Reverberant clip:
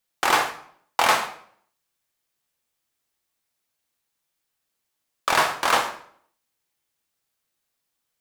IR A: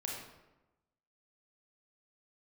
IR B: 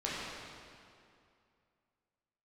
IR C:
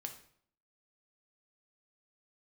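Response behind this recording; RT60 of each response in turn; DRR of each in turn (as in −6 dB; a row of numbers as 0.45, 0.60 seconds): C; 1.0, 2.4, 0.60 seconds; −2.5, −8.0, 4.0 decibels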